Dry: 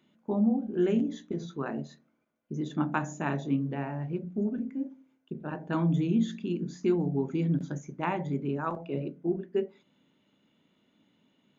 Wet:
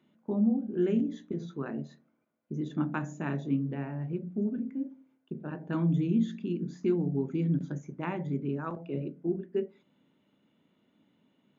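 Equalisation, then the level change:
high-pass filter 58 Hz
dynamic equaliser 820 Hz, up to −7 dB, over −46 dBFS, Q 1.1
high-shelf EQ 3,000 Hz −9.5 dB
0.0 dB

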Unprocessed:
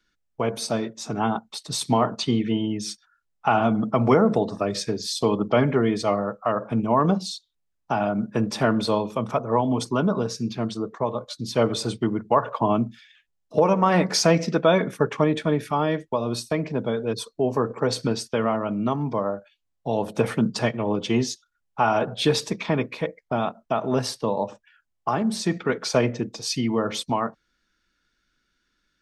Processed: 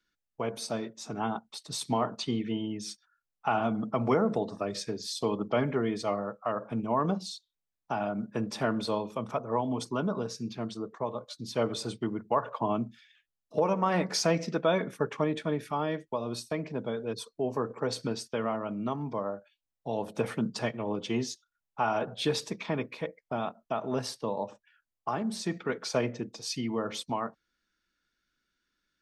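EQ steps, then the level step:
low-shelf EQ 110 Hz −5 dB
−7.5 dB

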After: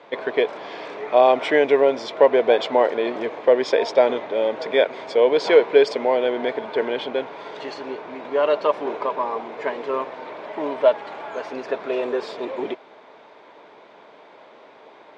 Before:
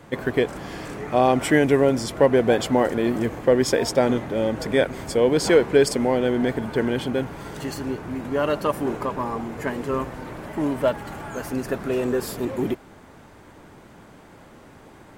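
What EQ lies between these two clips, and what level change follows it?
loudspeaker in its box 390–5,000 Hz, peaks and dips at 440 Hz +7 dB, 630 Hz +8 dB, 970 Hz +7 dB, 2,300 Hz +6 dB, 3,600 Hz +7 dB
−2.0 dB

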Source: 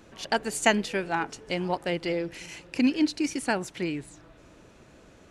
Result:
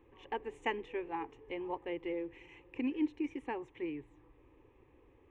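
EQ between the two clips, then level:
head-to-tape spacing loss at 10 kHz 28 dB
high-shelf EQ 6,400 Hz −8 dB
phaser with its sweep stopped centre 960 Hz, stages 8
−5.5 dB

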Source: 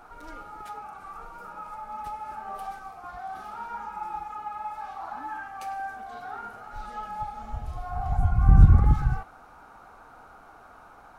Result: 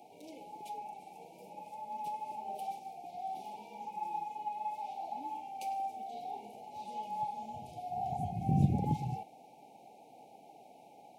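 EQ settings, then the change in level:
high-pass filter 150 Hz 24 dB per octave
Chebyshev band-stop filter 850–2,200 Hz, order 5
notch filter 2,200 Hz, Q 27
−1.5 dB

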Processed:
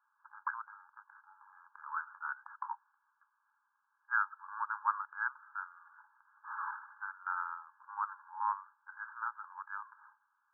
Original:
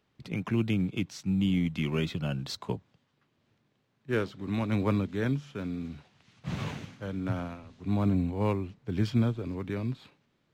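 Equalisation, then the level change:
spectral tilt +3 dB per octave
dynamic equaliser 1,300 Hz, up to +5 dB, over −56 dBFS, Q 7.5
linear-phase brick-wall band-pass 820–1,700 Hz
+4.5 dB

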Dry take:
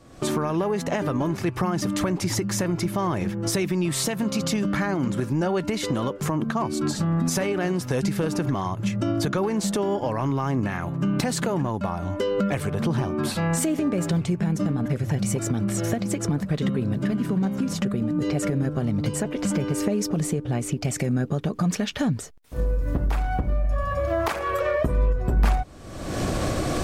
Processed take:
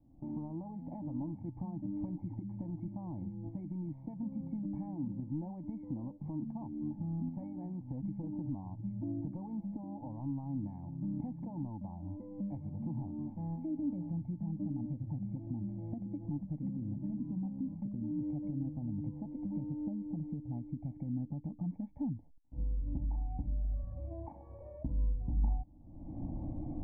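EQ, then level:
formant resonators in series u
spectral tilt −2.5 dB per octave
phaser with its sweep stopped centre 2,000 Hz, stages 8
−6.5 dB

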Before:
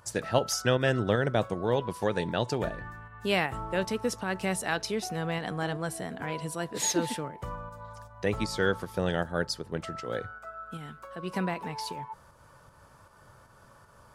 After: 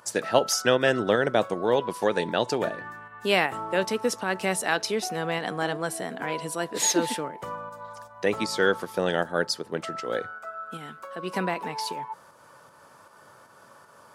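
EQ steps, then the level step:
high-pass filter 240 Hz 12 dB per octave
+5.0 dB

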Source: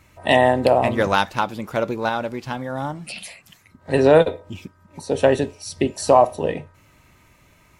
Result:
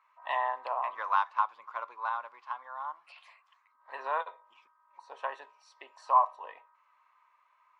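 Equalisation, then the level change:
four-pole ladder high-pass 1,000 Hz, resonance 80%
head-to-tape spacing loss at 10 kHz 29 dB
0.0 dB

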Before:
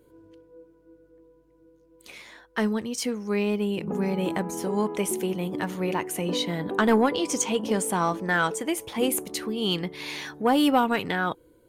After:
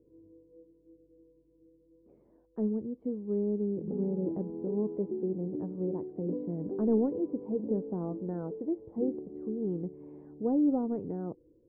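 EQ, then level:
transistor ladder low-pass 540 Hz, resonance 25%
0.0 dB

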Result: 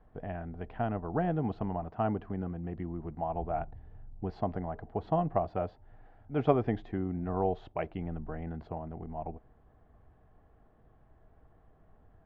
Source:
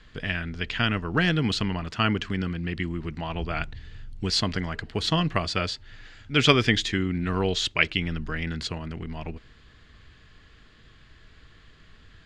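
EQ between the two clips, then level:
low-pass with resonance 750 Hz, resonance Q 4.9
−8.0 dB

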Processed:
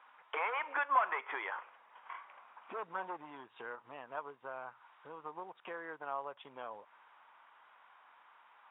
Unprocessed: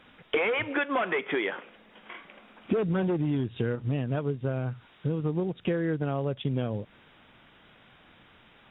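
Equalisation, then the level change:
four-pole ladder band-pass 1,100 Hz, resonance 60%
+6.5 dB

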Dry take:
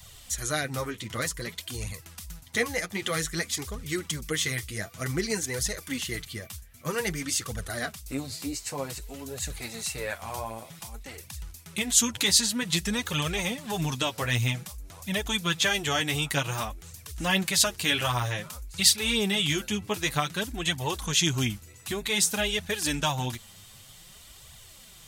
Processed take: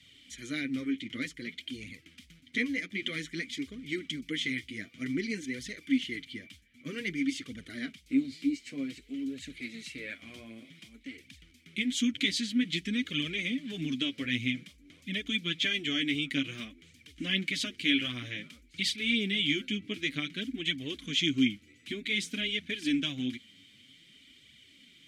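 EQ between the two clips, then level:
formant filter i
+9.0 dB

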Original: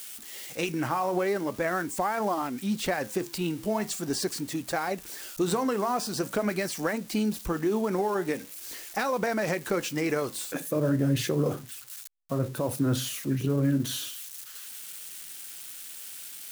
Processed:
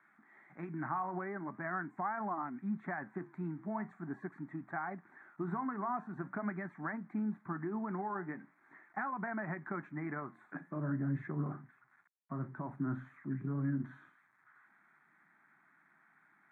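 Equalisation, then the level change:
elliptic band-pass filter 150–2,000 Hz, stop band 40 dB
high-frequency loss of the air 70 metres
phaser with its sweep stopped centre 1,200 Hz, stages 4
−5.0 dB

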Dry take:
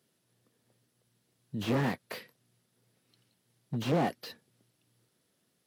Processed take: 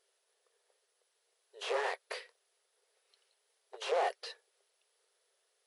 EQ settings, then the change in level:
linear-phase brick-wall band-pass 380–11,000 Hz
0.0 dB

